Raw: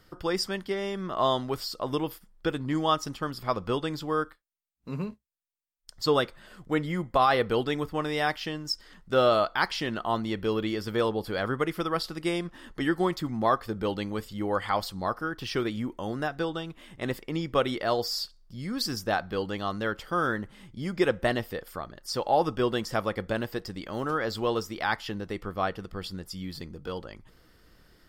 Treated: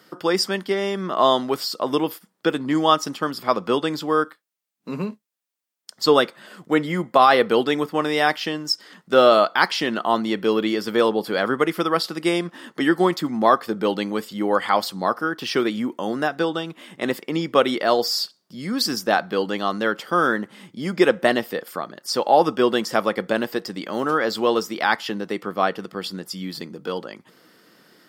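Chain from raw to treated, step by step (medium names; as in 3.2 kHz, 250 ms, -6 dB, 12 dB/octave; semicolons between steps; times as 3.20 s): high-pass 180 Hz 24 dB/octave; trim +8 dB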